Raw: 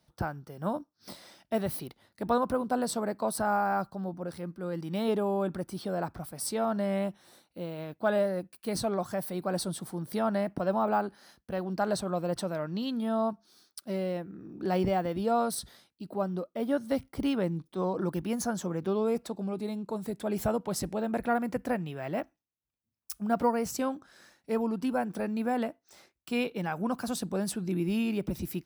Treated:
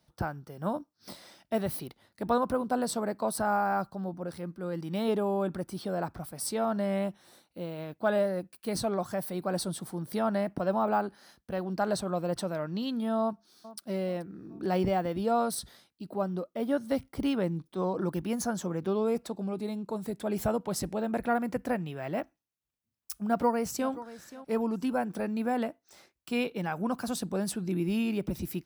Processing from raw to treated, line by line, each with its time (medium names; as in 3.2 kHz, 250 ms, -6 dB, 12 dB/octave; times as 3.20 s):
13.21–13.80 s: echo throw 430 ms, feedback 45%, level -17.5 dB
23.29–23.91 s: echo throw 530 ms, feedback 20%, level -16 dB